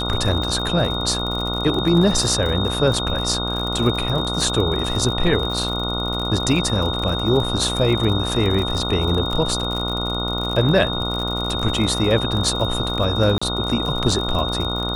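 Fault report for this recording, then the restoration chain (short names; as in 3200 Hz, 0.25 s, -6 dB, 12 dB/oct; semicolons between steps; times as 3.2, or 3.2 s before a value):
buzz 60 Hz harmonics 24 -26 dBFS
crackle 57/s -25 dBFS
tone 3700 Hz -25 dBFS
13.38–13.41 gap 35 ms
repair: de-click; de-hum 60 Hz, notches 24; notch 3700 Hz, Q 30; interpolate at 13.38, 35 ms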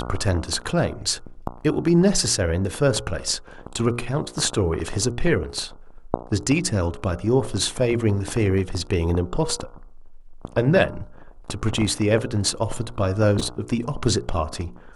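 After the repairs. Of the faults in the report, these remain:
none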